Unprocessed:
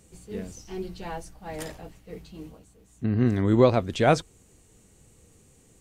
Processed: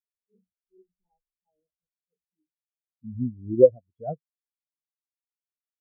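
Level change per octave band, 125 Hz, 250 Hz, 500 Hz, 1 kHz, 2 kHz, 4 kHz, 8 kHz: -11.0 dB, -7.5 dB, +1.5 dB, -15.0 dB, under -40 dB, under -40 dB, under -35 dB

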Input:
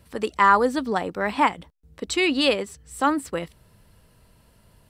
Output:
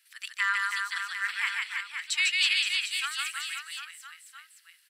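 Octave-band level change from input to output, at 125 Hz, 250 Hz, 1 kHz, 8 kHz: under -40 dB, under -40 dB, -15.5 dB, +2.0 dB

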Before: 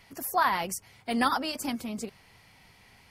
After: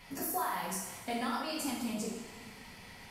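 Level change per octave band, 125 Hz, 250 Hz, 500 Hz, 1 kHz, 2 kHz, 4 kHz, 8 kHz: -2.0 dB, -4.5 dB, -4.5 dB, -8.5 dB, -9.0 dB, -6.0 dB, -1.0 dB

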